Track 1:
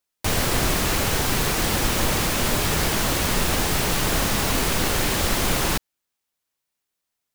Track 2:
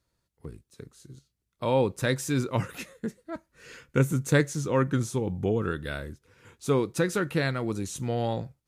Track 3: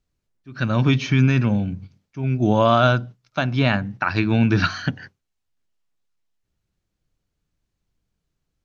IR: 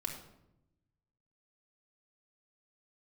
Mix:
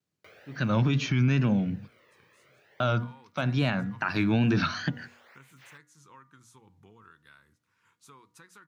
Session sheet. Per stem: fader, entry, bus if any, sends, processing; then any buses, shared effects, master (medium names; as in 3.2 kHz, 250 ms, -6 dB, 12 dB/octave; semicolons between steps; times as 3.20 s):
-18.5 dB, 0.00 s, bus A, no send, ten-band graphic EQ 250 Hz -10 dB, 500 Hz +7 dB, 2 kHz +11 dB, 8 kHz -11 dB, 16 kHz -12 dB; cancelling through-zero flanger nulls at 0.45 Hz, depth 1.5 ms; auto duck -20 dB, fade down 1.45 s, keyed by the third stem
-14.0 dB, 1.40 s, bus A, no send, resonant low shelf 780 Hz -8.5 dB, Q 3
-3.5 dB, 0.00 s, muted 1.88–2.80 s, no bus, no send, resonant low shelf 100 Hz -6.5 dB, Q 1.5; hum notches 50/100 Hz; vibrato 2.3 Hz 84 cents
bus A: 0.0 dB, hum notches 60/120/180/240/300 Hz; compression 3:1, threshold -54 dBFS, peak gain reduction 15 dB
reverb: none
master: high-pass 84 Hz 24 dB/octave; de-hum 239.7 Hz, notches 9; peak limiter -16.5 dBFS, peak gain reduction 7.5 dB